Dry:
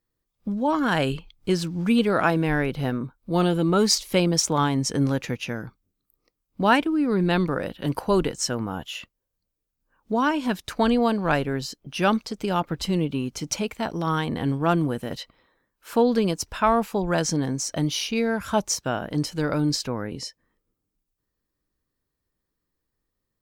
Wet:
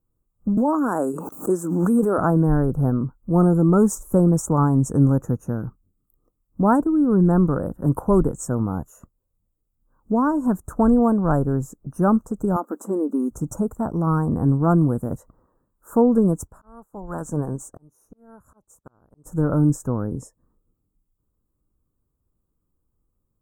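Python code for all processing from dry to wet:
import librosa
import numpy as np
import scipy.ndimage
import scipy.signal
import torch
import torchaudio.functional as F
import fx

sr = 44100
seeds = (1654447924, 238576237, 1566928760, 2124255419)

y = fx.chain(x, sr, fx.highpass(hz=260.0, slope=24),
    fx.high_shelf(hz=4500.0, db=5.5),
    fx.pre_swell(db_per_s=31.0), at=(0.57, 2.18))
y = fx.chain(y, sr, fx.brickwall_highpass(low_hz=210.0),
    fx.band_squash(depth_pct=70), at=(12.56, 13.31))
y = fx.spec_clip(y, sr, under_db=13, at=(16.46, 19.25), fade=0.02)
y = fx.auto_swell(y, sr, attack_ms=774.0, at=(16.46, 19.25), fade=0.02)
y = fx.upward_expand(y, sr, threshold_db=-48.0, expansion=1.5, at=(16.46, 19.25), fade=0.02)
y = scipy.signal.sosfilt(scipy.signal.ellip(3, 1.0, 40, [1300.0, 7400.0], 'bandstop', fs=sr, output='sos'), y)
y = fx.low_shelf(y, sr, hz=260.0, db=10.5)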